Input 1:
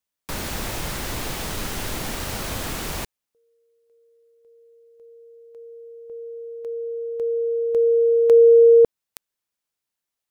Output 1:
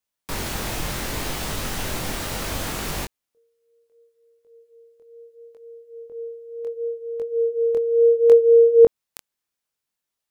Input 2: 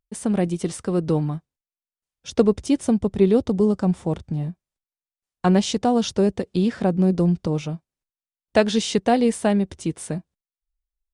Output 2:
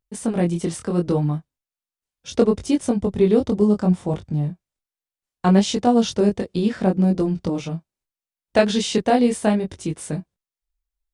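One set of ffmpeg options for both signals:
ffmpeg -i in.wav -af "flanger=delay=20:depth=4.6:speed=0.7,volume=4dB" out.wav

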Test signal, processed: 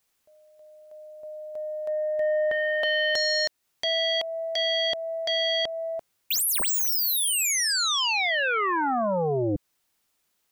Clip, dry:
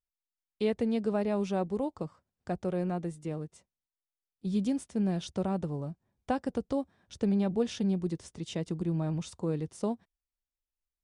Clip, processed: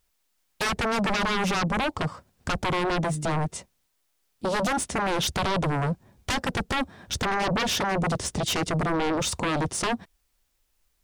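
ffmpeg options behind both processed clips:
ffmpeg -i in.wav -filter_complex "[0:a]asplit=2[link_01][link_02];[link_02]acompressor=threshold=-36dB:ratio=10,volume=-1dB[link_03];[link_01][link_03]amix=inputs=2:normalize=0,aeval=exprs='0.168*sin(PI/2*7.94*val(0)/0.168)':channel_layout=same,volume=-6.5dB" out.wav

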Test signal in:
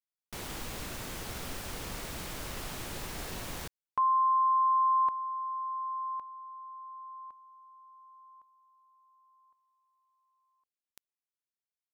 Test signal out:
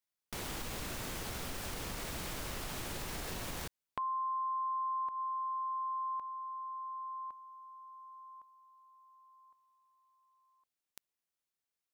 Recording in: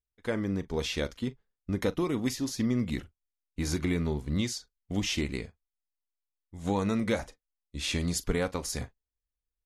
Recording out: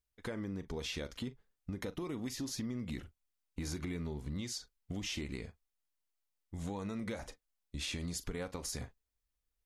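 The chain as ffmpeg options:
ffmpeg -i in.wav -af "acompressor=threshold=-38dB:ratio=6:attack=2.1:release=231:knee=1:detection=peak,volume=3dB" out.wav

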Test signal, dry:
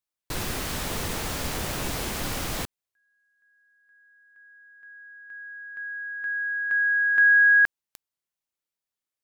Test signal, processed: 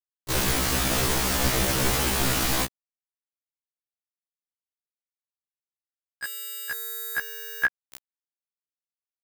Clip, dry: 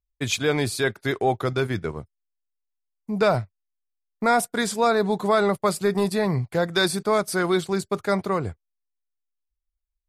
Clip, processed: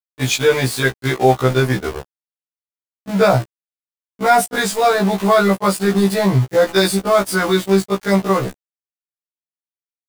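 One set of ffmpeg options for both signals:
ffmpeg -i in.wav -af "acontrast=39,aeval=exprs='val(0)*gte(abs(val(0)),0.0596)':channel_layout=same,afftfilt=real='re*1.73*eq(mod(b,3),0)':imag='im*1.73*eq(mod(b,3),0)':win_size=2048:overlap=0.75,volume=4dB" out.wav

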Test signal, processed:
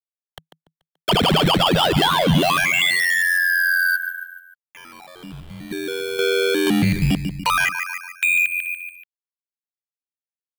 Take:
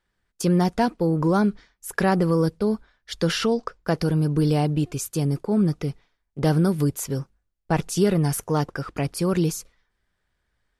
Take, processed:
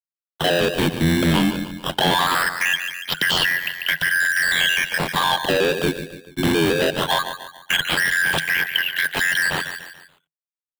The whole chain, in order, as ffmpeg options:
ffmpeg -i in.wav -filter_complex "[0:a]afftfilt=real='real(if(lt(b,272),68*(eq(floor(b/68),0)*3+eq(floor(b/68),1)*0+eq(floor(b/68),2)*1+eq(floor(b/68),3)*2)+mod(b,68),b),0)':imag='imag(if(lt(b,272),68*(eq(floor(b/68),0)*3+eq(floor(b/68),1)*0+eq(floor(b/68),2)*1+eq(floor(b/68),3)*2)+mod(b,68),b),0)':win_size=2048:overlap=0.75,acrusher=bits=8:mix=0:aa=0.000001,apsyclip=15.5dB,acrusher=samples=13:mix=1:aa=0.000001:lfo=1:lforange=20.8:lforate=0.2,asplit=2[link_01][link_02];[link_02]aecho=0:1:144|288|432|576:0.188|0.0829|0.0365|0.016[link_03];[link_01][link_03]amix=inputs=2:normalize=0,acrossover=split=96|340|1100|5900[link_04][link_05][link_06][link_07][link_08];[link_04]acompressor=threshold=-25dB:ratio=4[link_09];[link_05]acompressor=threshold=-9dB:ratio=4[link_10];[link_06]acompressor=threshold=-9dB:ratio=4[link_11];[link_07]acompressor=threshold=-13dB:ratio=4[link_12];[link_08]acompressor=threshold=-22dB:ratio=4[link_13];[link_09][link_10][link_11][link_12][link_13]amix=inputs=5:normalize=0,lowshelf=frequency=320:gain=-4.5,volume=8.5dB,asoftclip=hard,volume=-8.5dB,aeval=exprs='val(0)*sin(2*PI*44*n/s)':channel_layout=same,asoftclip=type=tanh:threshold=-10.5dB,equalizer=frequency=160:width_type=o:width=0.33:gain=12,equalizer=frequency=3150:width_type=o:width=0.33:gain=11,equalizer=frequency=6300:width_type=o:width=0.33:gain=-7,volume=-2.5dB" out.wav

